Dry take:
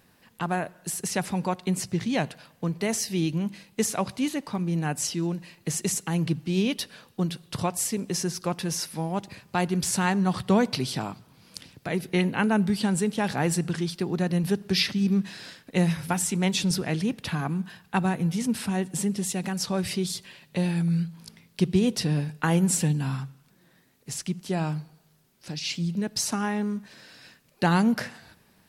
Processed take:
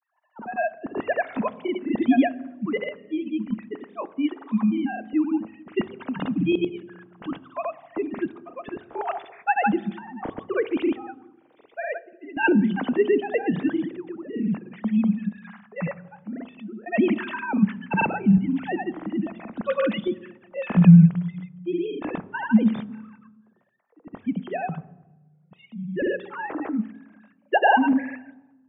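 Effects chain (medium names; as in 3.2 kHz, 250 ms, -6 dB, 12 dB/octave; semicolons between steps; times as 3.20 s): formants replaced by sine waves; random-step tremolo, depth 95%; level-controlled noise filter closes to 890 Hz, open at -25 dBFS; granulator, pitch spread up and down by 0 st; on a send: reverberation RT60 1.1 s, pre-delay 3 ms, DRR 16.5 dB; on the sum: trim +8.5 dB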